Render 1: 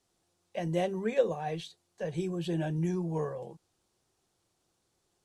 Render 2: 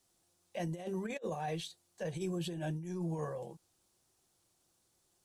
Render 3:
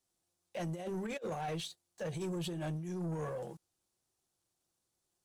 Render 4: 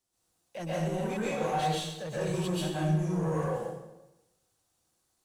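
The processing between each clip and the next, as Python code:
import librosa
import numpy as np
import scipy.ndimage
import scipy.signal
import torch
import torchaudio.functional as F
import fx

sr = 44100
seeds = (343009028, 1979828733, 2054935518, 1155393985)

y1 = fx.high_shelf(x, sr, hz=7500.0, db=11.5)
y1 = fx.notch(y1, sr, hz=430.0, q=12.0)
y1 = fx.over_compress(y1, sr, threshold_db=-33.0, ratio=-0.5)
y1 = F.gain(torch.from_numpy(y1), -4.0).numpy()
y2 = fx.leveller(y1, sr, passes=2)
y2 = F.gain(torch.from_numpy(y2), -5.0).numpy()
y3 = fx.rev_plate(y2, sr, seeds[0], rt60_s=1.0, hf_ratio=0.8, predelay_ms=110, drr_db=-8.0)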